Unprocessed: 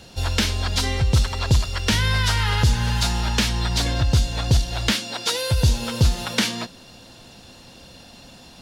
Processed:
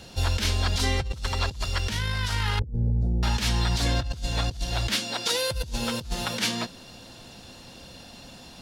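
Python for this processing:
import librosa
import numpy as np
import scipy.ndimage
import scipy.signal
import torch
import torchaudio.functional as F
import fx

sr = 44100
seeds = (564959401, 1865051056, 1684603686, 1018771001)

y = fx.cheby2_lowpass(x, sr, hz=1000.0, order=4, stop_db=40, at=(2.59, 3.23))
y = fx.over_compress(y, sr, threshold_db=-22.0, ratio=-0.5)
y = y * librosa.db_to_amplitude(-3.0)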